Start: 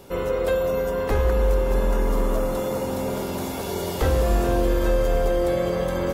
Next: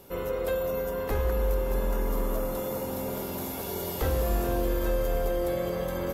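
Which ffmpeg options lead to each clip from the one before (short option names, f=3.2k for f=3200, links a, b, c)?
-af "equalizer=f=13k:w=2.2:g=14,volume=-6.5dB"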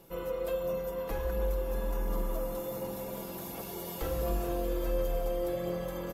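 -af "aecho=1:1:6:0.58,aphaser=in_gain=1:out_gain=1:delay=4.3:decay=0.25:speed=1.4:type=sinusoidal,volume=-7.5dB"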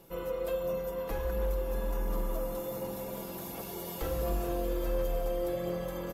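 -af "volume=24.5dB,asoftclip=hard,volume=-24.5dB"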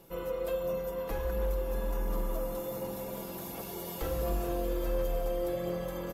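-af anull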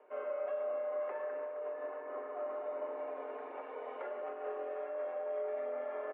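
-af "aecho=1:1:40.82|265.3:0.282|0.355,alimiter=level_in=3.5dB:limit=-24dB:level=0:latency=1:release=59,volume=-3.5dB,highpass=f=300:t=q:w=0.5412,highpass=f=300:t=q:w=1.307,lowpass=f=2.2k:t=q:w=0.5176,lowpass=f=2.2k:t=q:w=0.7071,lowpass=f=2.2k:t=q:w=1.932,afreqshift=76,volume=-1.5dB"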